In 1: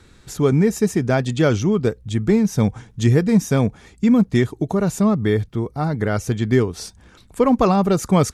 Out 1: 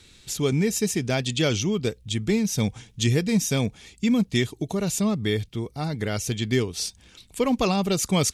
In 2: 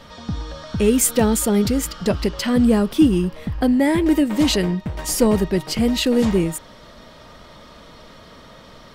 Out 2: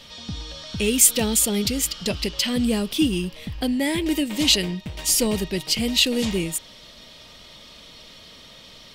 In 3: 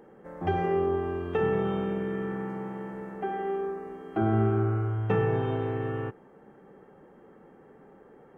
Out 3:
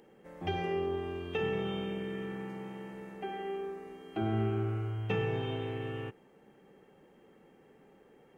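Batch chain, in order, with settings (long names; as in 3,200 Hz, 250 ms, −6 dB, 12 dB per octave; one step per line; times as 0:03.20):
high shelf with overshoot 2,000 Hz +10 dB, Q 1.5
level −6.5 dB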